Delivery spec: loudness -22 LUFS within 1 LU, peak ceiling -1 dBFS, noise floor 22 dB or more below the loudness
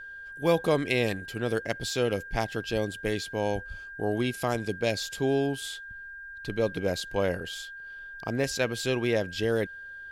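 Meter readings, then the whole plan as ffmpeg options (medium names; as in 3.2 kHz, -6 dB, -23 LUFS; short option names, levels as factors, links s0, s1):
steady tone 1.6 kHz; tone level -40 dBFS; loudness -29.5 LUFS; peak level -11.5 dBFS; loudness target -22.0 LUFS
-> -af "bandreject=f=1600:w=30"
-af "volume=2.37"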